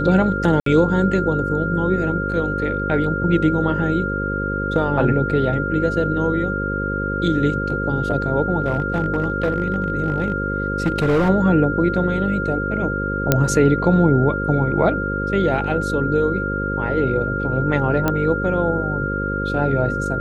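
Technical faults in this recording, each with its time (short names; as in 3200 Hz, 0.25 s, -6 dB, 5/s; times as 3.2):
buzz 50 Hz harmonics 11 -25 dBFS
tone 1400 Hz -24 dBFS
0.6–0.66 gap 63 ms
8.62–11.3 clipped -13 dBFS
13.32 pop 0 dBFS
18.08 pop -6 dBFS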